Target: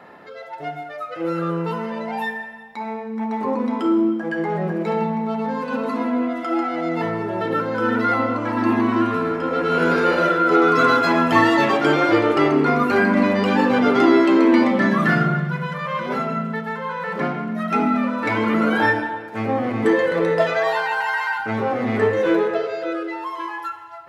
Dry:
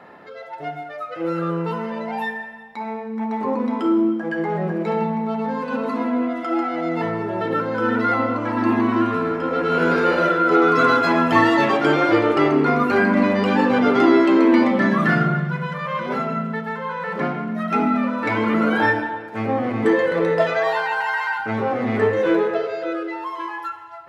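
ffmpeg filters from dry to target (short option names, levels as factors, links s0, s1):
-af "highshelf=f=5400:g=5"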